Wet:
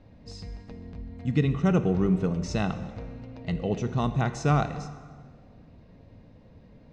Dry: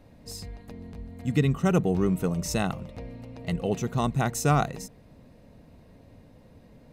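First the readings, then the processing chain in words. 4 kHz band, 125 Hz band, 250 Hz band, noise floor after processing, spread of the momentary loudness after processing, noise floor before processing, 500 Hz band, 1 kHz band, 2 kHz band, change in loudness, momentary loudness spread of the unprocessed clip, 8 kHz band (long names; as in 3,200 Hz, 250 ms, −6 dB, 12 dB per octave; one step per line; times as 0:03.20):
−3.0 dB, +0.5 dB, +0.5 dB, −53 dBFS, 18 LU, −54 dBFS, −1.0 dB, −2.0 dB, −2.0 dB, −0.5 dB, 18 LU, −9.5 dB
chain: low-pass filter 5,900 Hz 24 dB per octave
bass and treble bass +3 dB, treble −2 dB
dense smooth reverb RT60 1.6 s, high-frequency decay 0.75×, DRR 10 dB
level −2 dB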